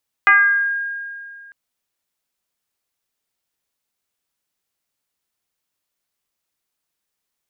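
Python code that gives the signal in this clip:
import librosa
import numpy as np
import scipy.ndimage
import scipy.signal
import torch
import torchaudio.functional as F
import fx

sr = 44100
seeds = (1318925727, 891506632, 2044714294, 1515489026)

y = fx.fm2(sr, length_s=1.25, level_db=-7.0, carrier_hz=1620.0, ratio=0.26, index=1.4, index_s=0.81, decay_s=2.27, shape='exponential')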